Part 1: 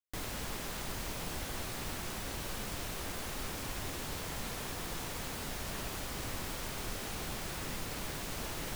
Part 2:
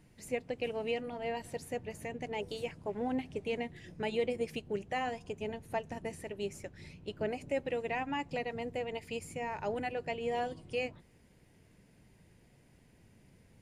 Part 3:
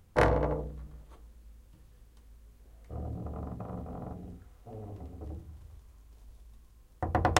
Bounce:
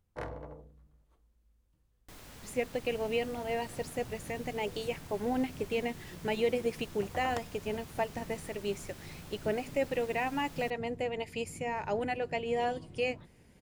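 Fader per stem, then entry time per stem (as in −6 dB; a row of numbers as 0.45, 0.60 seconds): −11.5, +3.0, −16.0 decibels; 1.95, 2.25, 0.00 seconds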